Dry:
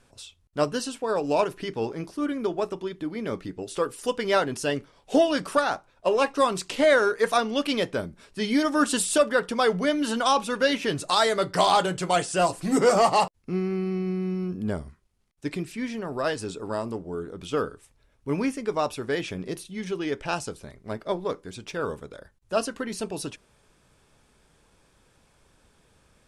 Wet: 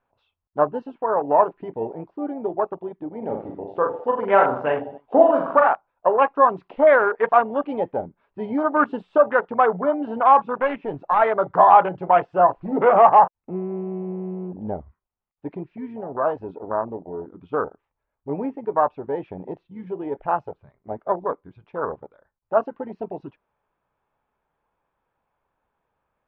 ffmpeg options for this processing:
-filter_complex "[0:a]asettb=1/sr,asplit=3[a][b][c];[a]atrim=end=3.184[d];[b]atrim=start=3.18:end=5.68,asetpts=PTS-STARTPTS,afade=t=in:d=0.004:c=qsin,afade=t=out:st=2.496:d=0.004:c=qsin,aecho=1:1:40|86|138.9|199.7|269.7:0.631|0.398|0.251|0.158|0.1,atrim=end_sample=110250[e];[c]atrim=start=5.676[f];[d][e]acrossfade=d=0.004:c1=hsin:c2=qsin[g];[g][f]acrossfade=d=0.004:c1=qsin:c2=hsin,asettb=1/sr,asplit=3[h][i][j];[h]atrim=end=10.554[k];[i]atrim=start=10.55:end=11.22,asetpts=PTS-STARTPTS,afade=t=in:d=0.004:c=qsin,afade=t=out:st=0.666:d=0.004:c=qsin,aeval=exprs='(tanh(5.62*val(0)+0.5)-tanh(0.5))/5.62':c=same[l];[j]atrim=start=11.216[m];[k][l]acrossfade=d=0.004:c1=hsin:c2=qsin[n];[n][m]acrossfade=d=0.004:c1=qsin:c2=hsin,afwtdn=0.0398,lowpass=f=2.9k:w=0.5412,lowpass=f=2.9k:w=1.3066,equalizer=f=890:t=o:w=1.6:g=14.5,volume=-4dB"

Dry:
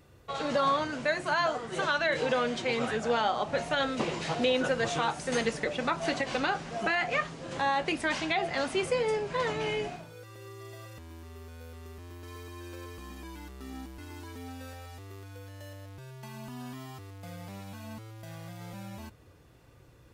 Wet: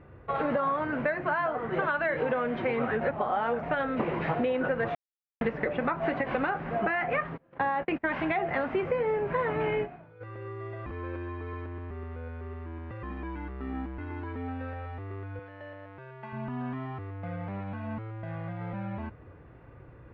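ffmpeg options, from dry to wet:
-filter_complex "[0:a]asplit=3[a][b][c];[a]afade=t=out:st=7.36:d=0.02[d];[b]agate=range=-31dB:threshold=-35dB:ratio=16:release=100:detection=peak,afade=t=in:st=7.36:d=0.02,afade=t=out:st=8.03:d=0.02[e];[c]afade=t=in:st=8.03:d=0.02[f];[d][e][f]amix=inputs=3:normalize=0,asplit=3[g][h][i];[g]afade=t=out:st=9.68:d=0.02[j];[h]agate=range=-12dB:threshold=-34dB:ratio=16:release=100:detection=peak,afade=t=in:st=9.68:d=0.02,afade=t=out:st=10.2:d=0.02[k];[i]afade=t=in:st=10.2:d=0.02[l];[j][k][l]amix=inputs=3:normalize=0,asettb=1/sr,asplit=3[m][n][o];[m]atrim=end=15.394[p];[n]atrim=start=15.39:end=16.33,asetpts=PTS-STARTPTS,afade=t=in:d=0.004:c=qsin,afade=t=out:st=0.936:d=0.004:c=qsin,highpass=f=420:p=1[q];[o]atrim=start=16.326[r];[p][q]acrossfade=d=0.004:c1=hsin:c2=qsin[s];[s][r]acrossfade=d=0.004:c1=qsin:c2=hsin,asplit=7[t][u][v][w][x][y][z];[t]atrim=end=3.012[aa];[u]atrim=start=3.008:end=3.632,asetpts=PTS-STARTPTS,areverse[ab];[v]atrim=start=3.628:end=4.95,asetpts=PTS-STARTPTS,afade=t=out:st=1.318:d=0.004:c=hsin[ac];[w]atrim=start=4.95:end=5.41,asetpts=PTS-STARTPTS,volume=0[ad];[x]atrim=start=5.41:end=10.862,asetpts=PTS-STARTPTS,afade=t=in:d=0.004:c=hsin[ae];[y]atrim=start=10.858:end=13.032,asetpts=PTS-STARTPTS,areverse[af];[z]atrim=start=13.028[ag];[aa][ab]acrossfade=d=0.004:c1=hsin:c2=hsin[ah];[ac][ad][ae]concat=n=3:v=0:a=1[ai];[ah][ai]acrossfade=d=0.004:c1=hsin:c2=hsin[aj];[aj][af]acrossfade=d=0.004:c1=hsin:c2=hsin[ak];[ak][ag]acrossfade=d=0.004:c1=hsin:c2=hsin,lowpass=f=2.1k:w=0.5412,lowpass=f=2.1k:w=1.3066,acompressor=threshold=-32dB:ratio=6,volume=7dB"

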